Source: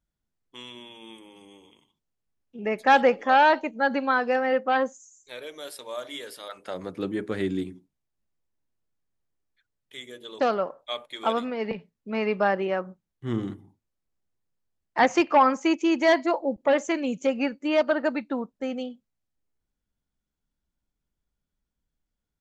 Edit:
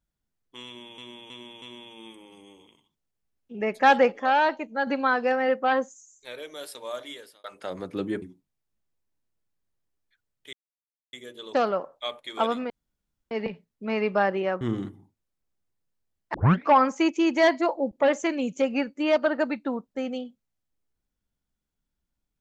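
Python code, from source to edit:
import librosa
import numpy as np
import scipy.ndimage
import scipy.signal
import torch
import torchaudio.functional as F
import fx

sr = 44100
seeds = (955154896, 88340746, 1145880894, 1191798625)

y = fx.edit(x, sr, fx.repeat(start_s=0.66, length_s=0.32, count=4),
    fx.clip_gain(start_s=3.16, length_s=0.75, db=-3.5),
    fx.fade_out_span(start_s=6.02, length_s=0.46),
    fx.cut(start_s=7.26, length_s=0.42),
    fx.insert_silence(at_s=9.99, length_s=0.6),
    fx.insert_room_tone(at_s=11.56, length_s=0.61),
    fx.cut(start_s=12.86, length_s=0.4),
    fx.tape_start(start_s=14.99, length_s=0.34), tone=tone)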